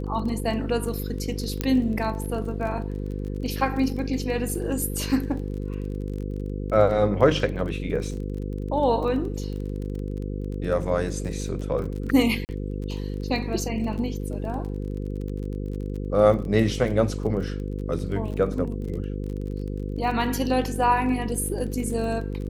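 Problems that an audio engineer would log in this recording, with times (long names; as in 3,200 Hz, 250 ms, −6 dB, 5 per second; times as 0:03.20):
mains buzz 50 Hz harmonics 10 −30 dBFS
surface crackle 28 per second −33 dBFS
0:01.61: click −10 dBFS
0:12.45–0:12.49: drop-out 39 ms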